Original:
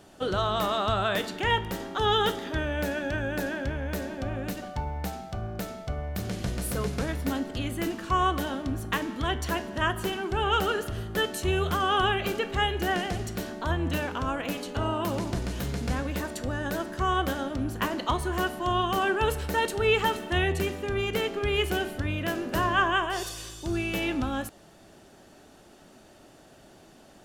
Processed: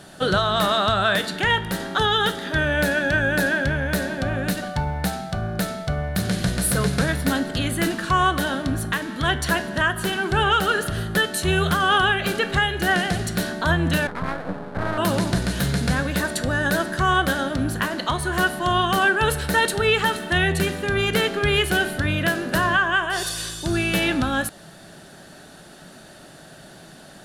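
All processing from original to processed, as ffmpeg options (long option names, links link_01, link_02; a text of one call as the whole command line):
ffmpeg -i in.wav -filter_complex "[0:a]asettb=1/sr,asplit=3[link_01][link_02][link_03];[link_01]atrim=end=14.074[link_04];[link_02]atrim=start=14.07:end=14.98,asetpts=PTS-STARTPTS,afade=type=in:duration=0.004:curve=qsin,afade=type=out:start_time=0.906:duration=0.004:curve=qsin,lowpass=frequency=1200:width=0.5412,lowpass=frequency=1200:width=1.3066,aeval=exprs='max(val(0),0)':channel_layout=same[link_05];[link_03]atrim=start=14.976[link_06];[link_04][link_05]acrossfade=duration=0.004:curve1=hsin:curve2=qsin[link_07];[link_07][link_06]acrossfade=duration=0.004:curve1=qsin:curve2=hsin,equalizer=frequency=160:width_type=o:width=0.67:gain=11,equalizer=frequency=630:width_type=o:width=0.67:gain=4,equalizer=frequency=1600:width_type=o:width=0.67:gain=10,equalizer=frequency=4000:width_type=o:width=0.67:gain=9,equalizer=frequency=10000:width_type=o:width=0.67:gain=11,alimiter=limit=-13dB:level=0:latency=1:release=458,acontrast=33,volume=-1.5dB" out.wav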